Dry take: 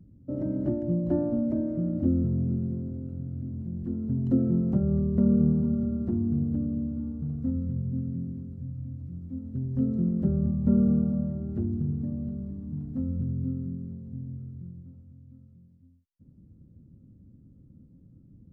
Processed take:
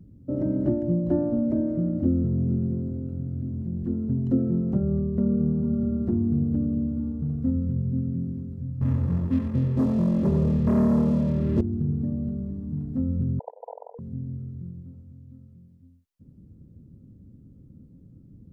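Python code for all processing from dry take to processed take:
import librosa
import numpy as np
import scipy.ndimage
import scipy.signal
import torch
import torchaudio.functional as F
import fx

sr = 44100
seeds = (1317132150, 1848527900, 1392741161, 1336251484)

y = fx.chain(x, sr, fx.leveller(passes=3),
    fx.notch_comb(f0_hz=750.0),
    fx.echo_single(ms=90, db=-7.0), at=(8.81, 11.61))
y = fx.chain(y, sr, fx.sine_speech(),
    fx.brickwall_bandpass(low_hz=450.0, high_hz=1000.0),
    fx.env_flatten(amount_pct=70), at=(13.39, 13.99))
y = fx.peak_eq(y, sr, hz=420.0, db=3.5, octaves=0.33)
y = fx.rider(y, sr, range_db=4, speed_s=0.5)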